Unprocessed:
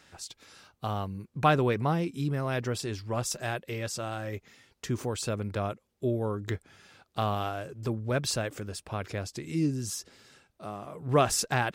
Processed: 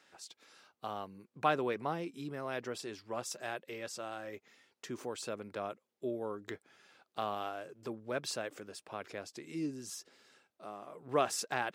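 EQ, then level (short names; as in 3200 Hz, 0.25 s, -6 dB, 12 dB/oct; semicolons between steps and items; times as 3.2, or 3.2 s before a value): HPF 280 Hz 12 dB/oct; high shelf 5400 Hz -4.5 dB; -6.0 dB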